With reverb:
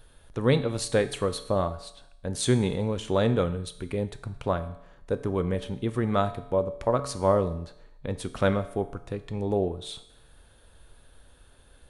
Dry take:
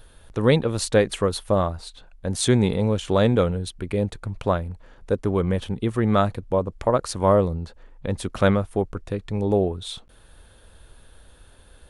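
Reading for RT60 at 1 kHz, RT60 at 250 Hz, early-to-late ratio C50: 0.80 s, 0.80 s, 14.0 dB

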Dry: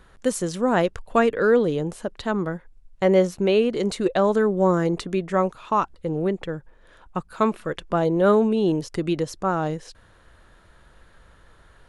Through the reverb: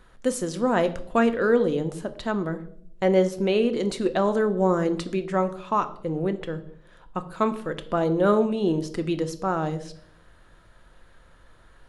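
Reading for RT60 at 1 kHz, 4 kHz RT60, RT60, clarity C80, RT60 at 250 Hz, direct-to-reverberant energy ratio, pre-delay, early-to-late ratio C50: 0.55 s, 0.55 s, 0.70 s, 18.0 dB, 1.0 s, 9.0 dB, 3 ms, 15.5 dB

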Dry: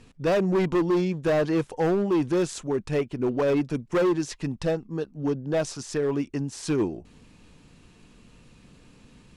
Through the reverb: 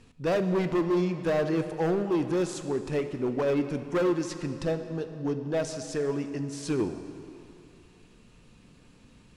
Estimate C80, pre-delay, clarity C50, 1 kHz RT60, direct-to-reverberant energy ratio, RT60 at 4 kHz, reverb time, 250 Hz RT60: 10.0 dB, 11 ms, 9.0 dB, 2.8 s, 8.0 dB, 2.1 s, 2.8 s, 2.5 s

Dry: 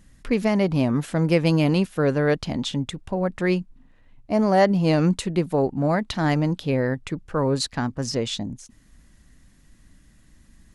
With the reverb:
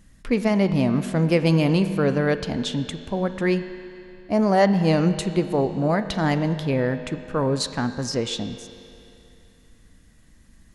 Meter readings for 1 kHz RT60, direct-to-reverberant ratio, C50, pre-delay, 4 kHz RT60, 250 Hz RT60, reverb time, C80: 2.8 s, 9.0 dB, 10.5 dB, 4 ms, 2.7 s, 2.8 s, 2.8 s, 11.0 dB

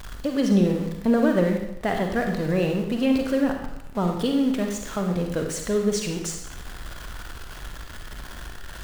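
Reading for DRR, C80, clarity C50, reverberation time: 3.0 dB, 7.0 dB, 4.5 dB, 0.85 s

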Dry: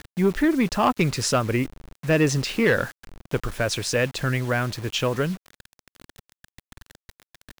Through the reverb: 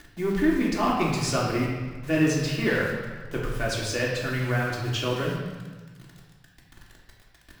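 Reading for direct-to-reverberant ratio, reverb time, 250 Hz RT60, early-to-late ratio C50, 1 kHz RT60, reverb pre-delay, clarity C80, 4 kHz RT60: −4.5 dB, 1.4 s, 1.6 s, 1.5 dB, 1.4 s, 3 ms, 3.5 dB, 1.2 s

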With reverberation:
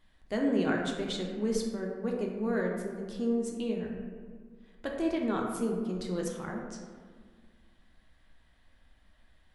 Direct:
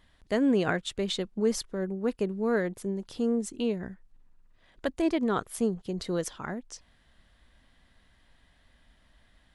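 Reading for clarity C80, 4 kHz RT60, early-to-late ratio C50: 4.5 dB, 0.90 s, 2.5 dB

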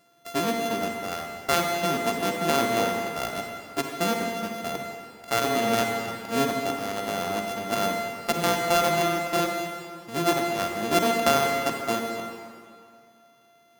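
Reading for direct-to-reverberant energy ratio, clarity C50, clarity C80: 2.5 dB, 3.0 dB, 4.0 dB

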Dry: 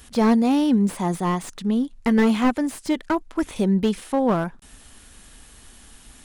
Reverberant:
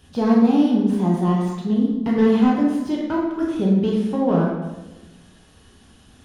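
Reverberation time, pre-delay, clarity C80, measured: 1.1 s, 3 ms, 3.5 dB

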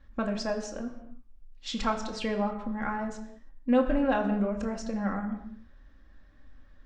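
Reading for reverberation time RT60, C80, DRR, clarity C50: non-exponential decay, 11.0 dB, 1.5 dB, 9.5 dB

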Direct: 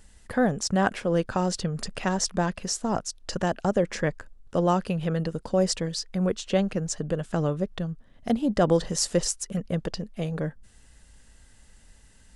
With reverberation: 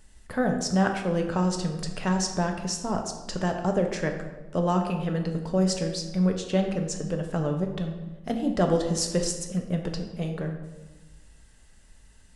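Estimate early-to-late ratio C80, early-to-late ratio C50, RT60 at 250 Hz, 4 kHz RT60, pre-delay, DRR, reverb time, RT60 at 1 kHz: 8.5 dB, 6.5 dB, 1.4 s, 0.75 s, 4 ms, 3.0 dB, 1.2 s, 1.1 s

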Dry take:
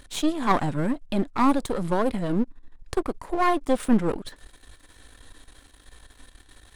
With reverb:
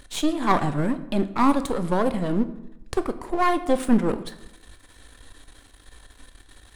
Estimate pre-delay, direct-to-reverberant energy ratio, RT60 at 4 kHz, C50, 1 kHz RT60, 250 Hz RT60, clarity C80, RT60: 15 ms, 10.5 dB, 0.60 s, 14.0 dB, 0.85 s, 0.90 s, 16.0 dB, 0.90 s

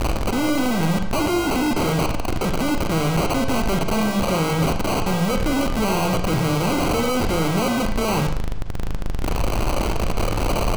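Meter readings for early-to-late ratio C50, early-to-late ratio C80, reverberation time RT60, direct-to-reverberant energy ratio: 7.5 dB, 10.5 dB, 0.60 s, 5.5 dB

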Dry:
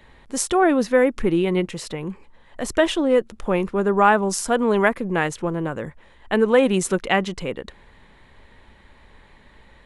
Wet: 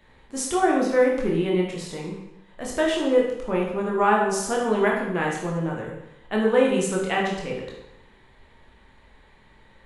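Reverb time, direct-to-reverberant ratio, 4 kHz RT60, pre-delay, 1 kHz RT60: 0.85 s, −2.5 dB, 0.80 s, 16 ms, 0.85 s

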